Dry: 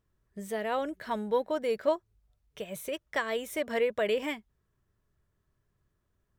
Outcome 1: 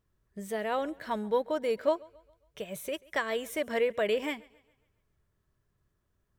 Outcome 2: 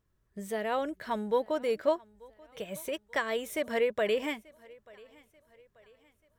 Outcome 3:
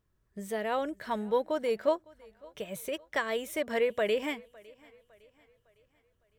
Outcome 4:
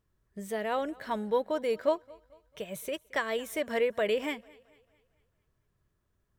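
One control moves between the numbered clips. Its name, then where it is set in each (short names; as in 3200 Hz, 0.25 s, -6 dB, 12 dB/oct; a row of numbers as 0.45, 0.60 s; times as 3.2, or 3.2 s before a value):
thinning echo, time: 0.137, 0.886, 0.557, 0.222 s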